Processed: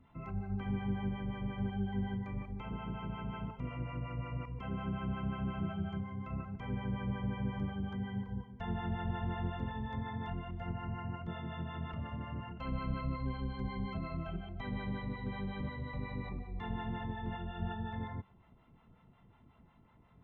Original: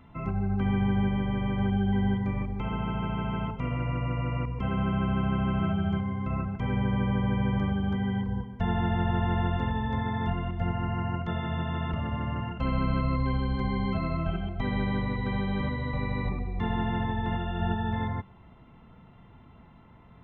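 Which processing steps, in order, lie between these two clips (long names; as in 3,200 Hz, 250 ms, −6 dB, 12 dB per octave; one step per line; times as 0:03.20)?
two-band tremolo in antiphase 5.5 Hz, depth 70%, crossover 530 Hz
level −7 dB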